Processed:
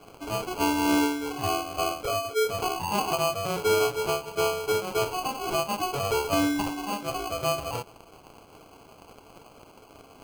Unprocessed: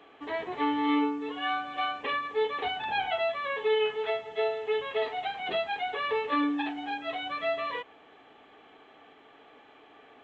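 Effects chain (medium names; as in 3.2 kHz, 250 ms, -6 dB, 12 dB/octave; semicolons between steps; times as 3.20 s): 2.03–2.49 s: resonances exaggerated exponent 3; crackle 580 per s -43 dBFS; sample-and-hold 24×; trim +3 dB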